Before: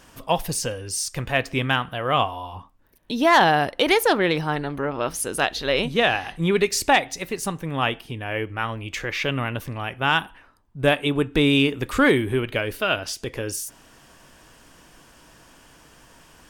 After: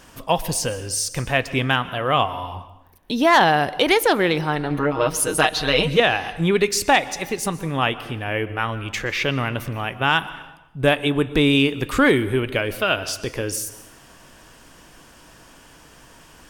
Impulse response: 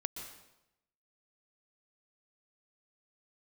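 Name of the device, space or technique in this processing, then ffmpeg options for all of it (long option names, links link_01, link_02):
compressed reverb return: -filter_complex "[0:a]asplit=2[link_01][link_02];[1:a]atrim=start_sample=2205[link_03];[link_02][link_03]afir=irnorm=-1:irlink=0,acompressor=threshold=-23dB:ratio=6,volume=-6dB[link_04];[link_01][link_04]amix=inputs=2:normalize=0,asettb=1/sr,asplit=3[link_05][link_06][link_07];[link_05]atrim=end=4.704[link_08];[link_06]atrim=start=4.7:end=6,asetpts=PTS-STARTPTS,afade=type=in:duration=0.004:curve=qsin,afade=type=out:start_time=1.296:duration=0.004:curve=qsin,aecho=1:1:6.4:0.9,atrim=end_sample=57330[link_09];[link_07]atrim=start=5.996[link_10];[link_08][link_09]acrossfade=duration=0.004:curve1=hsin:curve2=qsin[link_11];[link_11][link_10]acrossfade=duration=0.004:curve1=qsin:curve2=hsin"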